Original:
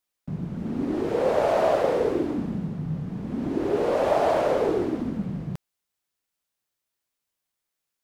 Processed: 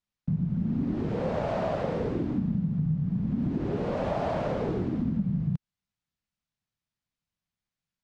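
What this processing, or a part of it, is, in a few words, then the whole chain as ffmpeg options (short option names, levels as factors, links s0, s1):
jukebox: -af "lowpass=5500,lowshelf=f=260:t=q:w=1.5:g=11,acompressor=threshold=0.112:ratio=6,volume=0.562"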